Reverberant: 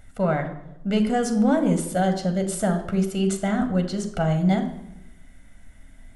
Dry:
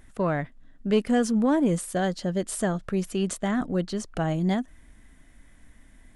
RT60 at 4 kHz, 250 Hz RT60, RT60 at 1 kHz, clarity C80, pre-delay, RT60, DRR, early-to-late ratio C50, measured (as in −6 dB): 0.60 s, 1.1 s, 0.80 s, 12.5 dB, 11 ms, 0.90 s, 5.5 dB, 10.5 dB